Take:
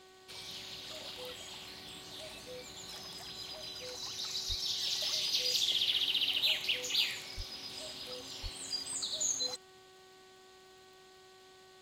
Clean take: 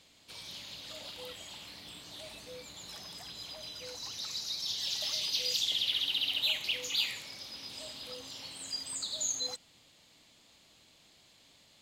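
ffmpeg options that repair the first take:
ffmpeg -i in.wav -filter_complex "[0:a]adeclick=threshold=4,bandreject=frequency=375.5:width_type=h:width=4,bandreject=frequency=751:width_type=h:width=4,bandreject=frequency=1126.5:width_type=h:width=4,bandreject=frequency=1502:width_type=h:width=4,bandreject=frequency=1877.5:width_type=h:width=4,asplit=3[link_01][link_02][link_03];[link_01]afade=type=out:start_time=4.48:duration=0.02[link_04];[link_02]highpass=frequency=140:width=0.5412,highpass=frequency=140:width=1.3066,afade=type=in:start_time=4.48:duration=0.02,afade=type=out:start_time=4.6:duration=0.02[link_05];[link_03]afade=type=in:start_time=4.6:duration=0.02[link_06];[link_04][link_05][link_06]amix=inputs=3:normalize=0,asplit=3[link_07][link_08][link_09];[link_07]afade=type=out:start_time=7.36:duration=0.02[link_10];[link_08]highpass=frequency=140:width=0.5412,highpass=frequency=140:width=1.3066,afade=type=in:start_time=7.36:duration=0.02,afade=type=out:start_time=7.48:duration=0.02[link_11];[link_09]afade=type=in:start_time=7.48:duration=0.02[link_12];[link_10][link_11][link_12]amix=inputs=3:normalize=0,asplit=3[link_13][link_14][link_15];[link_13]afade=type=out:start_time=8.42:duration=0.02[link_16];[link_14]highpass=frequency=140:width=0.5412,highpass=frequency=140:width=1.3066,afade=type=in:start_time=8.42:duration=0.02,afade=type=out:start_time=8.54:duration=0.02[link_17];[link_15]afade=type=in:start_time=8.54:duration=0.02[link_18];[link_16][link_17][link_18]amix=inputs=3:normalize=0" out.wav

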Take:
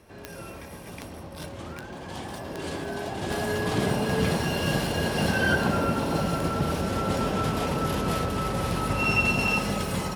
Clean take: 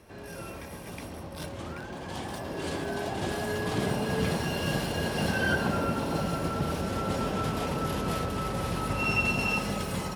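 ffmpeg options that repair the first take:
ffmpeg -i in.wav -af "adeclick=threshold=4,asetnsamples=nb_out_samples=441:pad=0,asendcmd='3.3 volume volume -3.5dB',volume=0dB" out.wav

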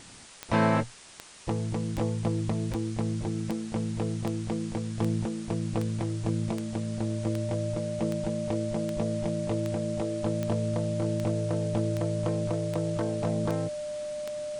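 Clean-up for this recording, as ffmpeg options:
ffmpeg -i in.wav -af "adeclick=threshold=4,bandreject=frequency=600:width=30,afftdn=noise_reduction=30:noise_floor=-35" out.wav

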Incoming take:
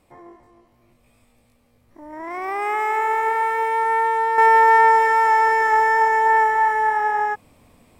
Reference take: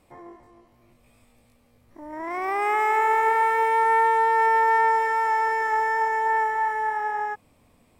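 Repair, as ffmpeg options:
ffmpeg -i in.wav -af "asetnsamples=nb_out_samples=441:pad=0,asendcmd='4.38 volume volume -6.5dB',volume=0dB" out.wav

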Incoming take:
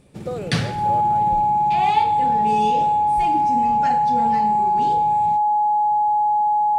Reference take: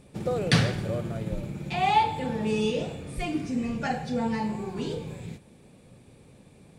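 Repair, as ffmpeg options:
ffmpeg -i in.wav -af "bandreject=frequency=840:width=30" out.wav

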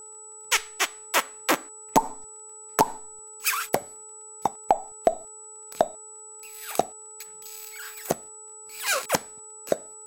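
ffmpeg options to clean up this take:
ffmpeg -i in.wav -af "adeclick=threshold=4,bandreject=frequency=431.5:width_type=h:width=4,bandreject=frequency=863:width_type=h:width=4,bandreject=frequency=1294.5:width_type=h:width=4,bandreject=frequency=7900:width=30" out.wav

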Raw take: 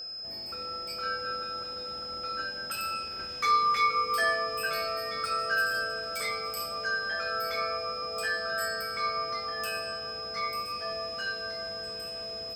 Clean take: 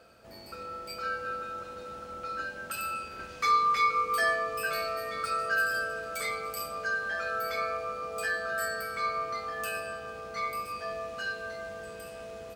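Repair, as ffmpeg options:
ffmpeg -i in.wav -af "adeclick=threshold=4,bandreject=frequency=5100:width=30" out.wav

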